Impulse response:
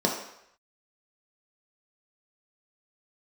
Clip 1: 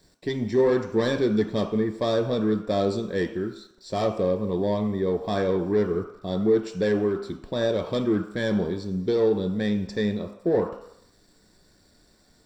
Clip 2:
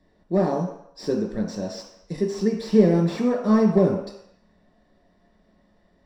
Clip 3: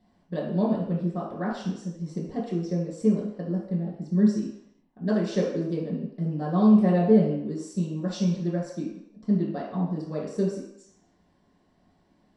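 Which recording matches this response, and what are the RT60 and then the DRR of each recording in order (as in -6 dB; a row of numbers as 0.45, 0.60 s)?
2; 0.75, 0.75, 0.75 s; 5.0, -1.0, -6.5 dB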